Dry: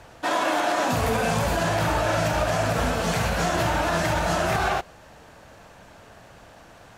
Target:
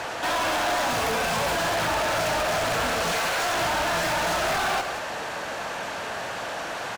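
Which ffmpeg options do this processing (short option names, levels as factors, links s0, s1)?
-filter_complex "[0:a]asettb=1/sr,asplit=3[s0][s1][s2];[s0]atrim=end=3.124[s3];[s1]atrim=start=3.12:end=3.58,asetpts=PTS-STARTPTS,afade=t=in:d=0.004:c=qsin,afade=t=out:st=0.456:d=0.004:c=qsin,highpass=440[s4];[s2]atrim=start=3.576[s5];[s3][s4]acrossfade=d=0.004:c1=hsin:c2=qsin[s6];[s6][s5]acrossfade=d=0.004:c1=qsin:c2=hsin,asplit=2[s7][s8];[s8]highpass=f=720:p=1,volume=63.1,asoftclip=type=tanh:threshold=0.282[s9];[s7][s9]amix=inputs=2:normalize=0,lowpass=f=5600:p=1,volume=0.501,aecho=1:1:184:0.316,volume=0.376"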